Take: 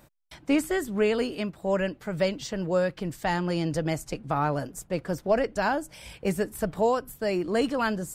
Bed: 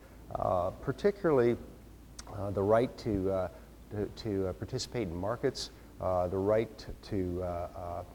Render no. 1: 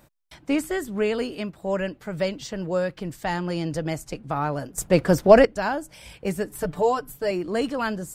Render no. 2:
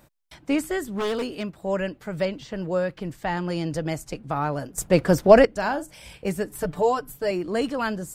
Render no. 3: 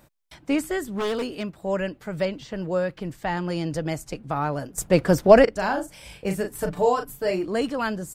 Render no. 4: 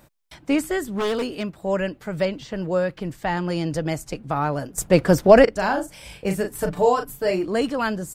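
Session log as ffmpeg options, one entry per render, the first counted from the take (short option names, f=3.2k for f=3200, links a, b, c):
-filter_complex "[0:a]asettb=1/sr,asplit=3[a][b][c];[a]atrim=end=6.494[d];[b]atrim=start=6.49:end=7.31,asetpts=PTS-STARTPTS,afade=t=in:d=0.004:c=qsin,afade=t=out:st=0.816:d=0.004:c=qsin,aecho=1:1:6.8:0.72,atrim=end_sample=36162[e];[c]atrim=start=7.306[f];[d][e]acrossfade=d=0.004:c1=hsin:c2=qsin[g];[g][f]acrossfade=d=0.004:c1=qsin:c2=hsin,asplit=3[h][i][j];[h]atrim=end=4.782[k];[i]atrim=start=4.778:end=5.452,asetpts=PTS-STARTPTS,volume=11dB[l];[j]atrim=start=5.448[m];[k][l]acrossfade=d=0.004:c1=hsin:c2=hsin[n];[n][m]acrossfade=d=0.004:c1=hsin:c2=hsin"
-filter_complex "[0:a]asettb=1/sr,asplit=3[a][b][c];[a]atrim=end=0.934[d];[b]atrim=start=0.93:end=1.53,asetpts=PTS-STARTPTS,afade=t=in:d=0.004:c=qsin,afade=t=out:st=0.596:d=0.004:c=qsin,aeval=exprs='0.0891*(abs(mod(val(0)/0.0891+3,4)-2)-1)':c=same[e];[c]atrim=start=1.526[f];[d][e]acrossfade=d=0.004:c1=hsin:c2=qsin[g];[g][f]acrossfade=d=0.004:c1=qsin:c2=hsin,asettb=1/sr,asplit=3[h][i][j];[h]atrim=end=2.254[k];[i]atrim=start=2.25:end=3.37,asetpts=PTS-STARTPTS,afade=t=in:d=0.004:c=qsin,afade=t=out:st=1.116:d=0.004:c=qsin,acrossover=split=3400[l][m];[m]acompressor=threshold=-50dB:ratio=4:attack=1:release=60[n];[l][n]amix=inputs=2:normalize=0[o];[j]atrim=start=3.366[p];[k][o]acrossfade=d=0.004:c1=hsin:c2=qsin[q];[q][p]acrossfade=d=0.004:c1=qsin:c2=hsin,asettb=1/sr,asplit=3[r][s][t];[r]atrim=end=5.494[u];[s]atrim=start=5.49:end=6.3,asetpts=PTS-STARTPTS,afade=t=in:d=0.004:c=qsin,afade=t=out:st=0.806:d=0.004:c=qsin,asplit=2[v][w];[w]adelay=44,volume=-13dB[x];[v][x]amix=inputs=2:normalize=0,atrim=end_sample=35721[y];[t]atrim=start=6.296[z];[u][y]acrossfade=d=0.004:c1=hsin:c2=qsin[aa];[aa][z]acrossfade=d=0.004:c1=qsin:c2=hsin"
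-filter_complex "[0:a]asplit=3[a][b][c];[a]afade=t=out:st=5.47:d=0.02[d];[b]asplit=2[e][f];[f]adelay=37,volume=-6.5dB[g];[e][g]amix=inputs=2:normalize=0,afade=t=in:st=5.47:d=0.02,afade=t=out:st=7.44:d=0.02[h];[c]afade=t=in:st=7.44:d=0.02[i];[d][h][i]amix=inputs=3:normalize=0"
-af "volume=2.5dB,alimiter=limit=-2dB:level=0:latency=1"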